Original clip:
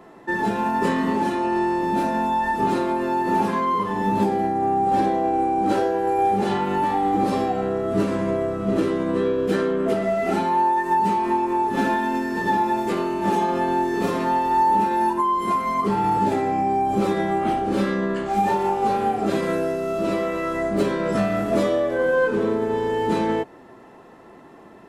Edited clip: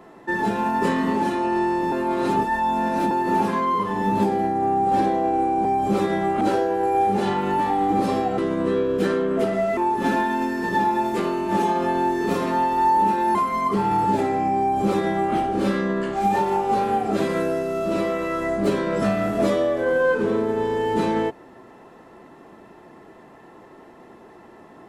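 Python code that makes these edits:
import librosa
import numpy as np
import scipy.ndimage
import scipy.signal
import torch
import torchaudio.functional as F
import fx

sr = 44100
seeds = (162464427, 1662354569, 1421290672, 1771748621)

y = fx.edit(x, sr, fx.reverse_span(start_s=1.92, length_s=1.19),
    fx.cut(start_s=7.62, length_s=1.25),
    fx.cut(start_s=10.26, length_s=1.24),
    fx.cut(start_s=15.08, length_s=0.4),
    fx.duplicate(start_s=16.72, length_s=0.76, to_s=5.65), tone=tone)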